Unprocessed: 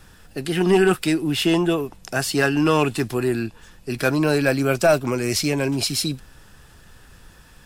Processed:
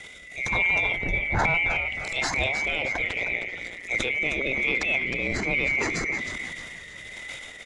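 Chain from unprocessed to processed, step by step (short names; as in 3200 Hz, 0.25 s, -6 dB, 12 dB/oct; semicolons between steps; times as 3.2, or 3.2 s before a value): band-swap scrambler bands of 2000 Hz; 0.96–1.39 RIAA curve playback; treble ducked by the level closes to 2000 Hz, closed at -18 dBFS; low shelf 450 Hz +9 dB; in parallel at +2.5 dB: compressor, threshold -35 dBFS, peak gain reduction 26 dB; on the sum: limiter -13.5 dBFS, peak gain reduction 12.5 dB; transient shaper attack -10 dB, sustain +9 dB; rotary speaker horn 1.2 Hz; 3.04–3.91 AM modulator 180 Hz, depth 90%; on a send: frequency-shifting echo 0.312 s, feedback 43%, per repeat -77 Hz, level -9 dB; on the sum: downsampling 22050 Hz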